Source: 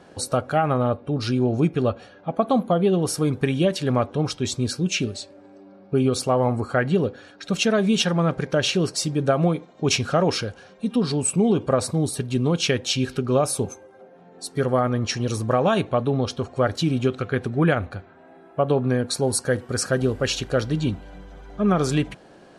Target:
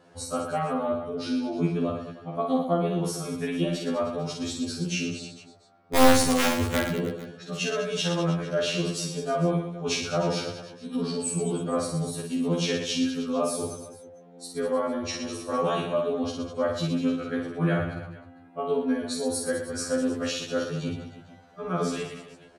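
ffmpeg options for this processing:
-filter_complex "[0:a]asettb=1/sr,asplit=3[s0][s1][s2];[s0]atrim=end=5.954[s3];[s1]atrim=start=5.95:end=6.84,asetpts=PTS-STARTPTS,afade=t=in:d=0.004:c=qsin,afade=t=out:st=0.886:d=0.004:c=qsin,bass=f=250:g=14,treble=f=4000:g=11[s4];[s2]atrim=start=6.836[s5];[s3][s4]acrossfade=d=0.004:c1=hsin:c2=qsin[s6];[s6][s5]acrossfade=d=0.004:c1=qsin:c2=hsin,bandreject=f=60:t=h:w=6,bandreject=f=120:t=h:w=6,bandreject=f=180:t=h:w=6,aeval=exprs='(mod(1.78*val(0)+1,2)-1)/1.78':c=same,asplit=2[s7][s8];[s8]aecho=0:1:50|115|199.5|309.4|452.2:0.631|0.398|0.251|0.158|0.1[s9];[s7][s9]amix=inputs=2:normalize=0,afftfilt=real='re*2*eq(mod(b,4),0)':imag='im*2*eq(mod(b,4),0)':win_size=2048:overlap=0.75,volume=0.531"

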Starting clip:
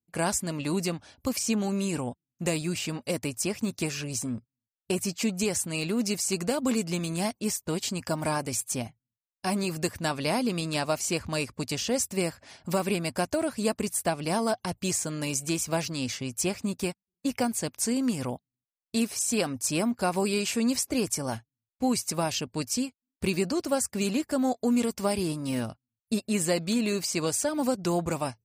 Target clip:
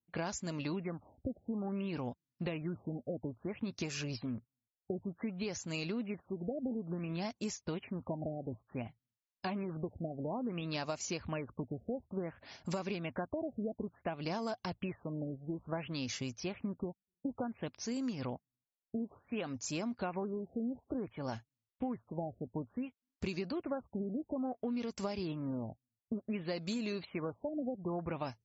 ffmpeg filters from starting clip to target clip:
-af "acompressor=threshold=0.0282:ratio=6,afftfilt=real='re*lt(b*sr/1024,760*pow(7700/760,0.5+0.5*sin(2*PI*0.57*pts/sr)))':imag='im*lt(b*sr/1024,760*pow(7700/760,0.5+0.5*sin(2*PI*0.57*pts/sr)))':win_size=1024:overlap=0.75,volume=0.708"

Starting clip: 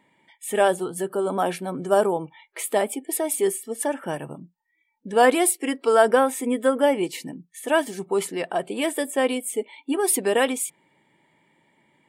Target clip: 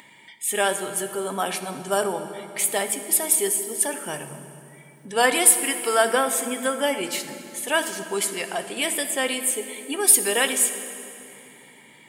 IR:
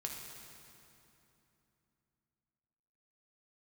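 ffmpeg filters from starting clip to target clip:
-filter_complex "[0:a]tiltshelf=f=1300:g=-8.5,acompressor=mode=upward:threshold=0.01:ratio=2.5,asplit=2[s0][s1];[1:a]atrim=start_sample=2205,lowshelf=f=390:g=6.5[s2];[s1][s2]afir=irnorm=-1:irlink=0,volume=0.944[s3];[s0][s3]amix=inputs=2:normalize=0,volume=0.596"

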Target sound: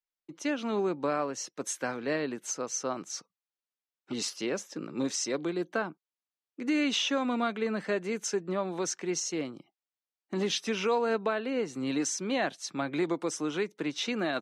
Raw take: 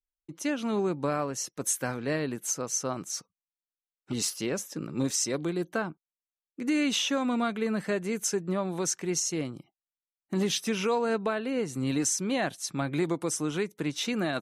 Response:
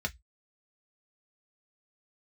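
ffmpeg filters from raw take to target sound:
-filter_complex "[0:a]acrossover=split=200 6700:gain=0.158 1 0.112[s0][s1][s2];[s0][s1][s2]amix=inputs=3:normalize=0"

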